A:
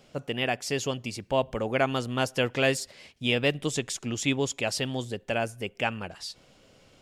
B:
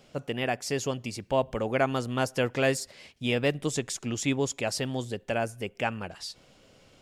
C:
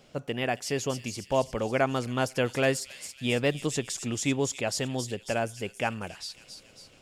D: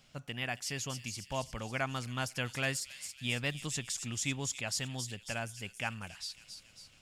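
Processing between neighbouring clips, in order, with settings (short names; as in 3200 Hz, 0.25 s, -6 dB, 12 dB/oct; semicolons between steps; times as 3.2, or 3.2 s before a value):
dynamic EQ 3100 Hz, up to -6 dB, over -42 dBFS, Q 1.7
thin delay 0.275 s, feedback 56%, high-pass 4500 Hz, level -5 dB
bell 430 Hz -14.5 dB 1.8 oct; gain -2.5 dB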